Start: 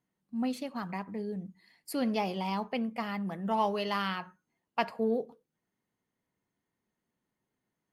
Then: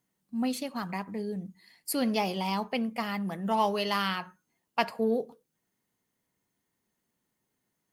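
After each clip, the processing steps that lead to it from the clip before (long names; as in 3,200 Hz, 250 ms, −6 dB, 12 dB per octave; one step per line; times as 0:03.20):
high-shelf EQ 4,400 Hz +9.5 dB
level +2 dB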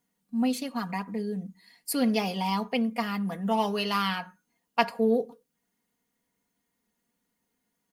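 comb filter 4.2 ms, depth 60%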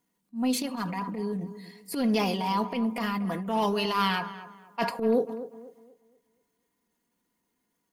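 hollow resonant body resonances 340/1,000 Hz, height 8 dB
transient designer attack −11 dB, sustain +6 dB
tape delay 242 ms, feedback 37%, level −12 dB, low-pass 1,600 Hz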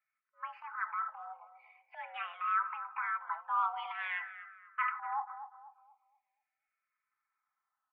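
single-sideband voice off tune +330 Hz 590–2,000 Hz
frequency shifter mixed with the dry sound −0.45 Hz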